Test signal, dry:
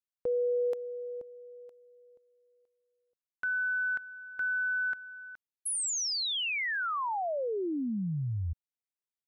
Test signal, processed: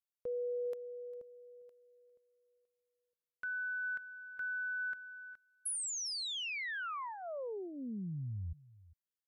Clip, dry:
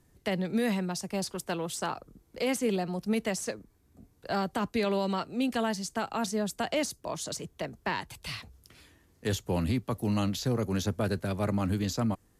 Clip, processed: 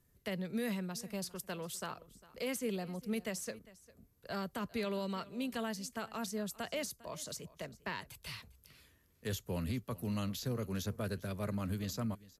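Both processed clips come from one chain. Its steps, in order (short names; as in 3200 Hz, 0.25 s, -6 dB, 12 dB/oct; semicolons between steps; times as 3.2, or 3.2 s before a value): thirty-one-band EQ 315 Hz -7 dB, 800 Hz -8 dB, 12500 Hz +9 dB; on a send: echo 0.402 s -20 dB; on the sum: gain -7.5 dB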